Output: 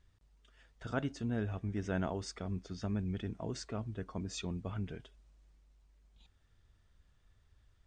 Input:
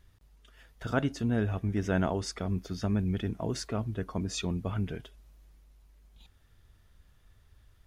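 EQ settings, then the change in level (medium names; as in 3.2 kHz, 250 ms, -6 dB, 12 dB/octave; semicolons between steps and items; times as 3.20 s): brick-wall FIR low-pass 9.2 kHz; -7.0 dB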